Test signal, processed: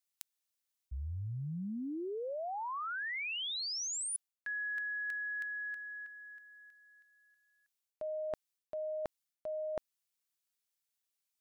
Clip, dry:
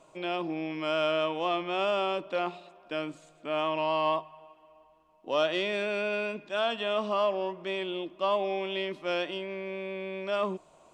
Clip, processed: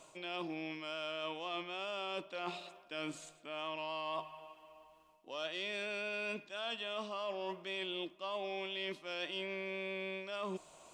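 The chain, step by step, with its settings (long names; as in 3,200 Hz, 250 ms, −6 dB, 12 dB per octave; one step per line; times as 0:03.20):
high-shelf EQ 2,000 Hz +11.5 dB
reversed playback
downward compressor 12 to 1, threshold −34 dBFS
reversed playback
level −3 dB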